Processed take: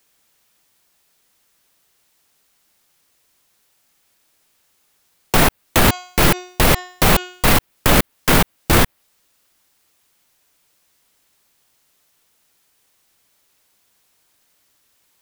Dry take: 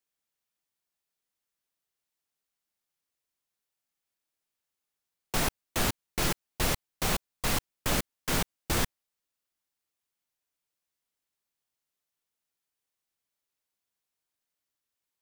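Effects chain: dynamic bell 6.4 kHz, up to -7 dB, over -47 dBFS, Q 0.84; 5.63–7.48 s: de-hum 362.2 Hz, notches 21; loudness maximiser +26 dB; trim -2 dB

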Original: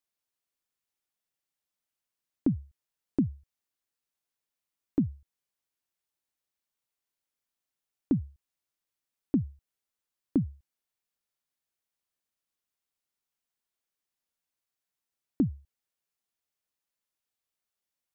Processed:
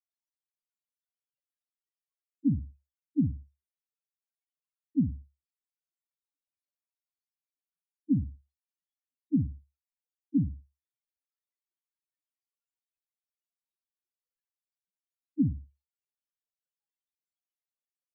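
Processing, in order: loudest bins only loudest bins 1; flutter echo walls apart 9.8 m, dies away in 0.25 s; trim +9 dB

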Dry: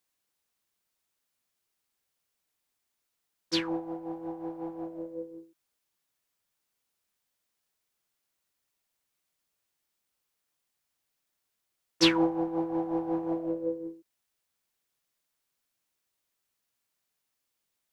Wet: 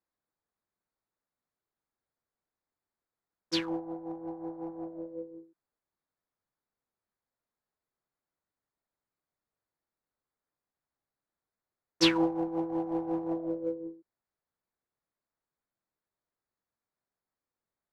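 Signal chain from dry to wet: local Wiener filter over 15 samples; trim -1.5 dB

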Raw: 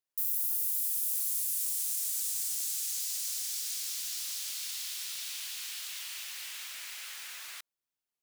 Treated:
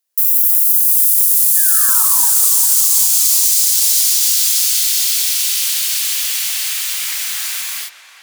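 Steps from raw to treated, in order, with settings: painted sound fall, 1.56–2.04 s, 860–1800 Hz -40 dBFS; Bessel high-pass 290 Hz, order 2; treble shelf 4.7 kHz +9.5 dB; on a send: filtered feedback delay 399 ms, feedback 65%, low-pass 1.9 kHz, level -9.5 dB; on the sum: gated-style reverb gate 300 ms rising, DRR -5.5 dB; loudness maximiser +10 dB; trim -1 dB

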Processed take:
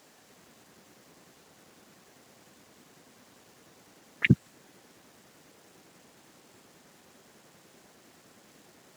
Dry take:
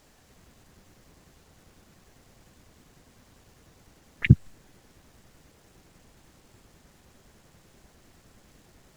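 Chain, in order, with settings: high-pass 210 Hz 12 dB/octave; trim +2.5 dB

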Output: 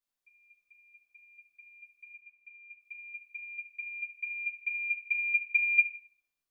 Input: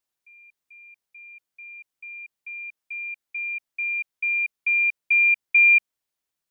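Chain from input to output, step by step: 2.13–2.78 s: low-pass 2.2 kHz -> 2.2 kHz; simulated room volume 67 m³, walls mixed, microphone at 1.2 m; upward expansion 1.5:1, over -17 dBFS; trim -7.5 dB

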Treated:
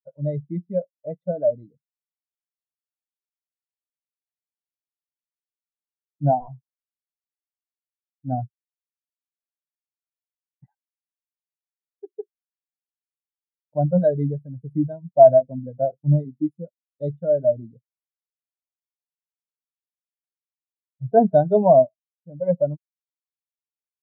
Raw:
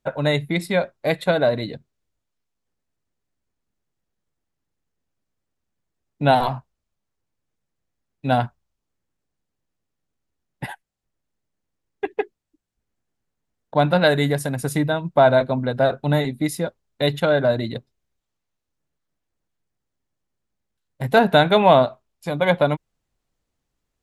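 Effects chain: tilt shelf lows +5 dB, about 940 Hz; spectral contrast expander 2.5:1; trim -1 dB

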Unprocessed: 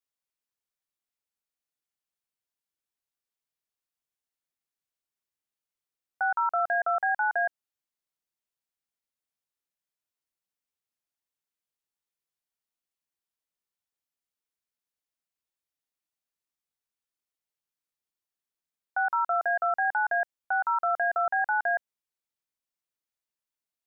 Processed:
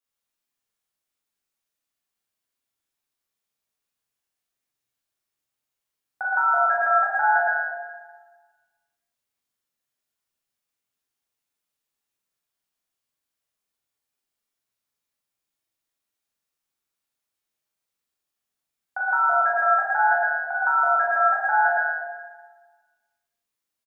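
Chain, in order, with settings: doubling 42 ms -2 dB; plate-style reverb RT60 1.4 s, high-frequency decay 0.9×, DRR -3.5 dB

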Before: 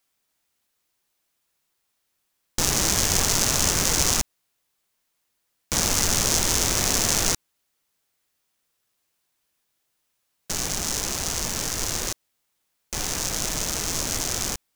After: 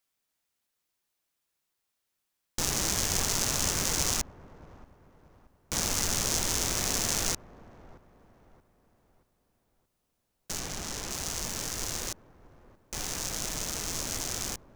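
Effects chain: 10.59–11.11 s: treble shelf 5.8 kHz -7.5 dB; on a send: feedback echo behind a low-pass 627 ms, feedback 41%, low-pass 1.1 kHz, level -16.5 dB; on the sum: trim -7 dB

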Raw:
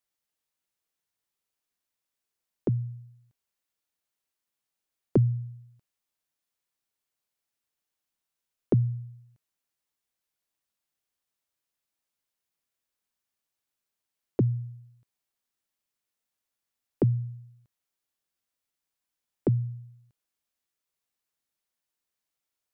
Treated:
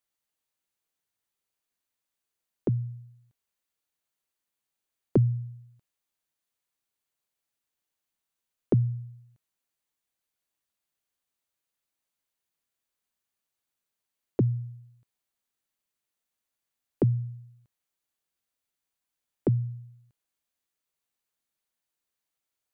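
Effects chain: band-stop 5.3 kHz, Q 15

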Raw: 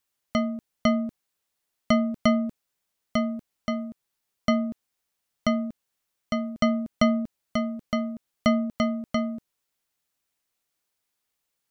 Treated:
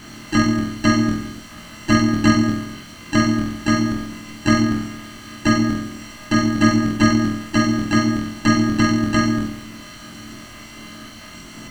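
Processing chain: spectral levelling over time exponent 0.4; peaking EQ 630 Hz -11.5 dB 0.92 oct; in parallel at +1 dB: peak limiter -20 dBFS, peak gain reduction 11 dB; on the sum: flutter echo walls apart 3.9 m, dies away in 0.86 s; harmony voices -12 st -7 dB, +5 st -3 dB, +7 st -11 dB; trim -1.5 dB

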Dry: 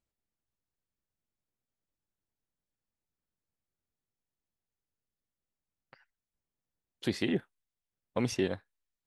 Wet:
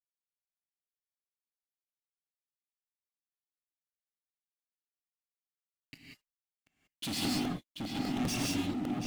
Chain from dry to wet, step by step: bass shelf 220 Hz -5 dB; tape echo 729 ms, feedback 57%, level -5 dB, low-pass 1.2 kHz; in parallel at +0.5 dB: compression, threshold -43 dBFS, peak gain reduction 16 dB; on the sum: gate with hold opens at -58 dBFS; elliptic band-stop 270–2400 Hz, stop band 40 dB; overload inside the chain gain 29.5 dB; peaking EQ 300 Hz +9 dB 0.23 oct; waveshaping leveller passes 5; gated-style reverb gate 210 ms rising, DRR -2.5 dB; crackling interface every 0.20 s, samples 64, repeat; trim -9 dB

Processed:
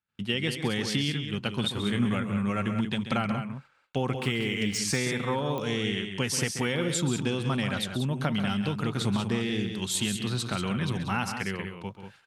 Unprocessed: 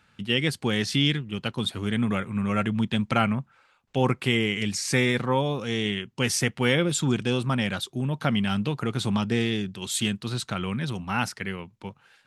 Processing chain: 4.20–4.78 s: median filter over 3 samples; gate -58 dBFS, range -31 dB; compression, threshold -24 dBFS, peak gain reduction 8 dB; 1.61–2.06 s: doubling 25 ms -6 dB; loudspeakers at several distances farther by 46 m -11 dB, 64 m -8 dB; clicks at 5.58 s, -20 dBFS

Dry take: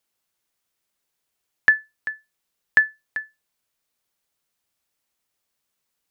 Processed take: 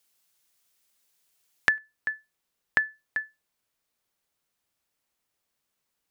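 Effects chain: treble shelf 2.4 kHz +8.5 dB, from 1.78 s -3 dB; compression 6:1, threshold -20 dBFS, peak gain reduction 11.5 dB

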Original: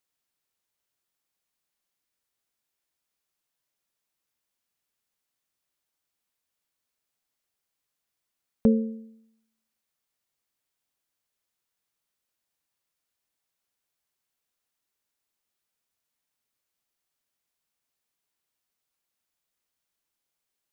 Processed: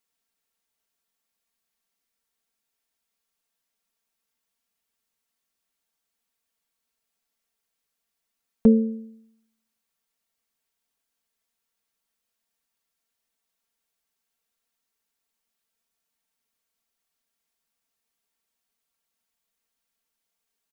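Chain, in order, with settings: comb 4.4 ms, depth 73%

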